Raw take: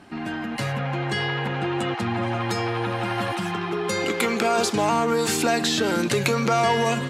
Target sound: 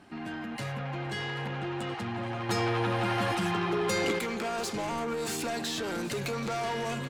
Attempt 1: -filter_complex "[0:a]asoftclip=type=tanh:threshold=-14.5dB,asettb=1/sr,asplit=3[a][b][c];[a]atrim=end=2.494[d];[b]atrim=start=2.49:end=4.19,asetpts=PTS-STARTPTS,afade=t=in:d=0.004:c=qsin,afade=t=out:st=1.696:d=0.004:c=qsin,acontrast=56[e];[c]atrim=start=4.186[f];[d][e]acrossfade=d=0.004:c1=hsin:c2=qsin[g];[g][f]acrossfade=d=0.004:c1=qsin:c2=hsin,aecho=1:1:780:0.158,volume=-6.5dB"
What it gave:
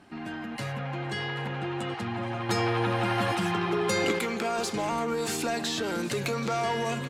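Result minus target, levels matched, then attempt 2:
soft clip: distortion -9 dB
-filter_complex "[0:a]asoftclip=type=tanh:threshold=-22.5dB,asettb=1/sr,asplit=3[a][b][c];[a]atrim=end=2.494[d];[b]atrim=start=2.49:end=4.19,asetpts=PTS-STARTPTS,afade=t=in:d=0.004:c=qsin,afade=t=out:st=1.696:d=0.004:c=qsin,acontrast=56[e];[c]atrim=start=4.186[f];[d][e]acrossfade=d=0.004:c1=hsin:c2=qsin[g];[g][f]acrossfade=d=0.004:c1=qsin:c2=hsin,aecho=1:1:780:0.158,volume=-6.5dB"

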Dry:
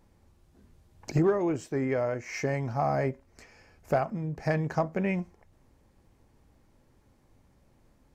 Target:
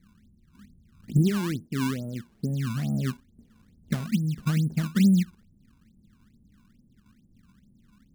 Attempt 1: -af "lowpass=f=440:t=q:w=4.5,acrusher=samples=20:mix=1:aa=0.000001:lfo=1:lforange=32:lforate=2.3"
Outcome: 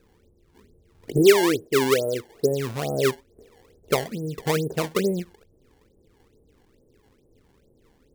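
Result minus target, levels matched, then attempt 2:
500 Hz band +15.5 dB
-af "lowpass=f=210:t=q:w=4.5,acrusher=samples=20:mix=1:aa=0.000001:lfo=1:lforange=32:lforate=2.3"

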